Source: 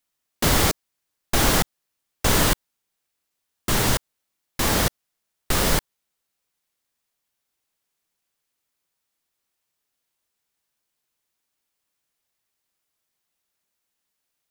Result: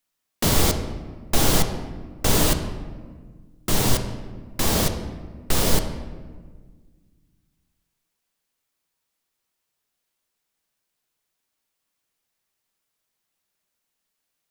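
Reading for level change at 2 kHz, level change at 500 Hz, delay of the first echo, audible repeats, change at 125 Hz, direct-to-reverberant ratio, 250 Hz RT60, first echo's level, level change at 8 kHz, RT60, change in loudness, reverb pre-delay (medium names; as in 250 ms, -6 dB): -4.5 dB, +0.5 dB, no echo, no echo, +1.5 dB, 6.0 dB, 2.2 s, no echo, 0.0 dB, 1.6 s, -1.0 dB, 4 ms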